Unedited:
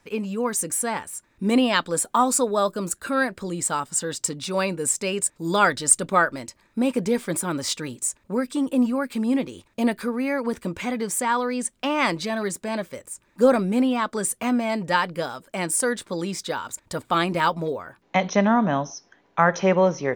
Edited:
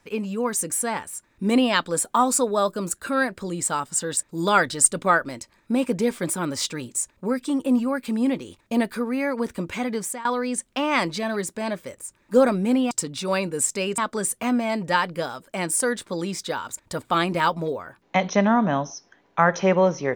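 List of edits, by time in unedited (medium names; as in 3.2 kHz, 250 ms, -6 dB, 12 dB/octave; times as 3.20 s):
4.17–5.24 s: move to 13.98 s
11.05–11.32 s: fade out, to -19.5 dB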